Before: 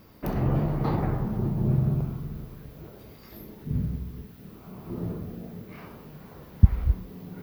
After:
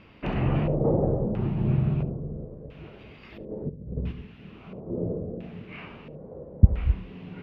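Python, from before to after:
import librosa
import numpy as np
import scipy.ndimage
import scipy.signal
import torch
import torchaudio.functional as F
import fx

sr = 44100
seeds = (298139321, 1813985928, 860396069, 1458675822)

y = fx.over_compress(x, sr, threshold_db=-34.0, ratio=-0.5, at=(3.5, 4.11), fade=0.02)
y = fx.filter_lfo_lowpass(y, sr, shape='square', hz=0.74, low_hz=530.0, high_hz=2700.0, q=4.5)
y = y + 10.0 ** (-19.5 / 20.0) * np.pad(y, (int(72 * sr / 1000.0), 0))[:len(y)]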